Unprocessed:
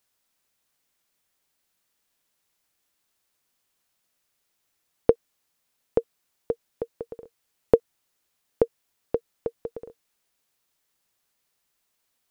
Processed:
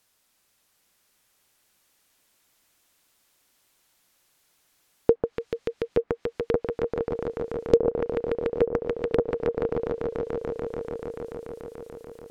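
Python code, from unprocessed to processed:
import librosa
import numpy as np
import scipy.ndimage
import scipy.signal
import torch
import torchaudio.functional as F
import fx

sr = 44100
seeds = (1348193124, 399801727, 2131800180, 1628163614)

y = fx.echo_swell(x, sr, ms=145, loudest=5, wet_db=-11)
y = fx.env_lowpass_down(y, sr, base_hz=1300.0, full_db=-22.0)
y = fx.transient(y, sr, attack_db=-9, sustain_db=4)
y = F.gain(torch.from_numpy(y), 7.5).numpy()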